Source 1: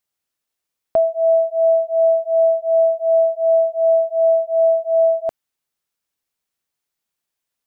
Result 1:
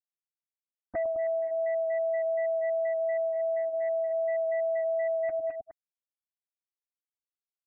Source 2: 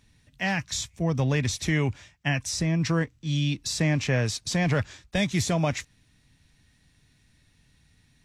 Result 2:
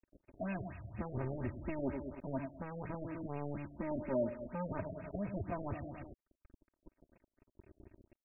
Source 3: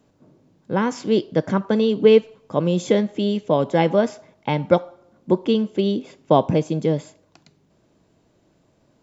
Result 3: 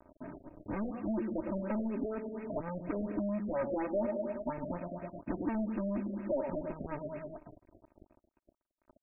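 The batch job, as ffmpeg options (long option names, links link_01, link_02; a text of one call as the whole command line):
ffmpeg -i in.wav -filter_complex "[0:a]afftfilt=real='re*pow(10,22/40*sin(2*PI*(1.6*log(max(b,1)*sr/1024/100)/log(2)-(0.43)*(pts-256)/sr)))':imag='im*pow(10,22/40*sin(2*PI*(1.6*log(max(b,1)*sr/1024/100)/log(2)-(0.43)*(pts-256)/sr)))':win_size=1024:overlap=0.75,lowpass=6100,highshelf=frequency=2600:width_type=q:width=3:gain=9,asplit=2[link_01][link_02];[link_02]aecho=0:1:104|208|312|416:0.224|0.101|0.0453|0.0204[link_03];[link_01][link_03]amix=inputs=2:normalize=0,acompressor=threshold=-20dB:ratio=4,equalizer=frequency=160:width_type=o:width=0.67:gain=11,equalizer=frequency=630:width_type=o:width=0.67:gain=4,equalizer=frequency=2500:width_type=o:width=0.67:gain=-4,asplit=2[link_04][link_05];[link_05]adynamicsmooth=sensitivity=1:basefreq=1000,volume=2dB[link_06];[link_04][link_06]amix=inputs=2:normalize=0,asoftclip=type=hard:threshold=-13.5dB,alimiter=limit=-22.5dB:level=0:latency=1:release=104,acrusher=bits=5:mix=0:aa=0.5,aecho=1:1:3.2:0.88,afftfilt=real='re*lt(b*sr/1024,700*pow(2800/700,0.5+0.5*sin(2*PI*4.2*pts/sr)))':imag='im*lt(b*sr/1024,700*pow(2800/700,0.5+0.5*sin(2*PI*4.2*pts/sr)))':win_size=1024:overlap=0.75,volume=-8.5dB" out.wav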